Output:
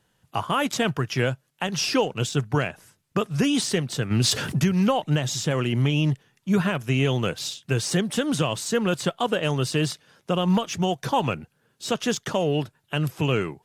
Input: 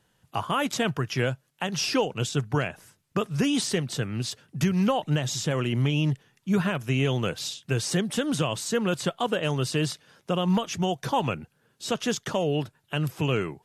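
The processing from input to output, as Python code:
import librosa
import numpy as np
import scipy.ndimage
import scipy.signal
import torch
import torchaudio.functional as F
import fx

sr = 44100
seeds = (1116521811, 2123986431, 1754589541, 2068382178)

p1 = np.sign(x) * np.maximum(np.abs(x) - 10.0 ** (-40.0 / 20.0), 0.0)
p2 = x + F.gain(torch.from_numpy(p1), -9.0).numpy()
y = fx.env_flatten(p2, sr, amount_pct=70, at=(4.1, 4.58), fade=0.02)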